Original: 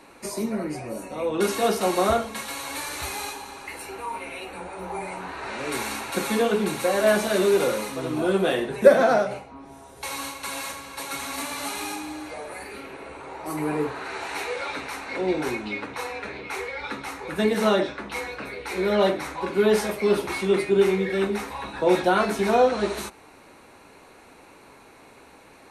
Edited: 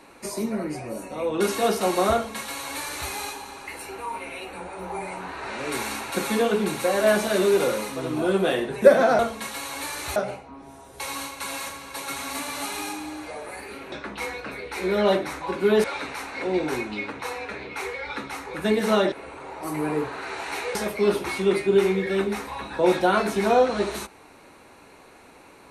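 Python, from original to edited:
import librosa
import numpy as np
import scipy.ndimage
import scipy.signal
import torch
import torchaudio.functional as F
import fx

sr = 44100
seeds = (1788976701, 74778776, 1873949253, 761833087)

y = fx.edit(x, sr, fx.duplicate(start_s=2.13, length_s=0.97, to_s=9.19),
    fx.swap(start_s=12.95, length_s=1.63, other_s=17.86, other_length_s=1.92), tone=tone)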